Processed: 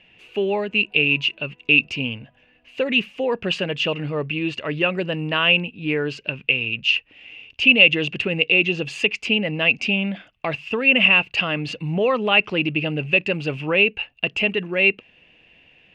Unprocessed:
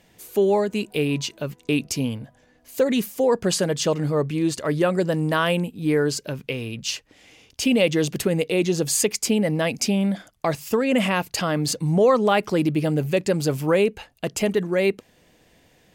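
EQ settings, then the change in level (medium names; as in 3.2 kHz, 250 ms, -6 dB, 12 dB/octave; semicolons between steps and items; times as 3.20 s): resonant low-pass 2.7 kHz, resonance Q 13; -3.5 dB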